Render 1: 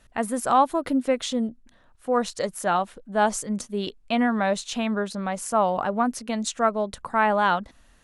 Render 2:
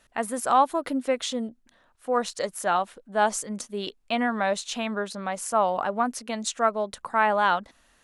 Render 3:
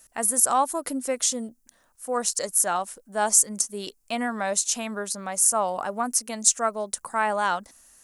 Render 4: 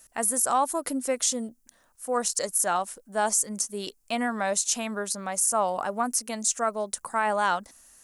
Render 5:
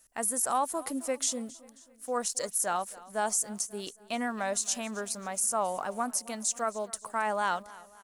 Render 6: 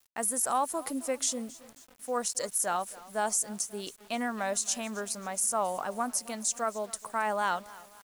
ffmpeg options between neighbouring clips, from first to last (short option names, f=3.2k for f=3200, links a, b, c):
-af "lowshelf=f=220:g=-11.5"
-af "aexciter=amount=6.8:drive=5.2:freq=5.2k,volume=-2.5dB"
-af "alimiter=limit=-14dB:level=0:latency=1:release=21"
-filter_complex "[0:a]asplit=2[a][b];[b]aeval=exprs='val(0)*gte(abs(val(0)),0.01)':c=same,volume=-6.5dB[c];[a][c]amix=inputs=2:normalize=0,aecho=1:1:269|538|807|1076:0.1|0.048|0.023|0.0111,volume=-8dB"
-af "acrusher=bits=8:mix=0:aa=0.000001"